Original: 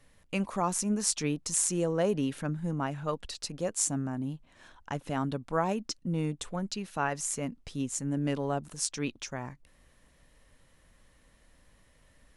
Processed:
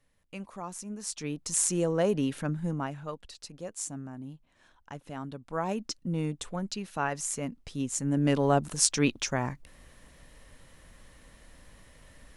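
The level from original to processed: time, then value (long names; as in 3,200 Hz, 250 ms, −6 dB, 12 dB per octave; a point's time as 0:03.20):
0:00.96 −10 dB
0:01.62 +1.5 dB
0:02.66 +1.5 dB
0:03.21 −7.5 dB
0:05.37 −7.5 dB
0:05.77 0 dB
0:07.73 0 dB
0:08.57 +8 dB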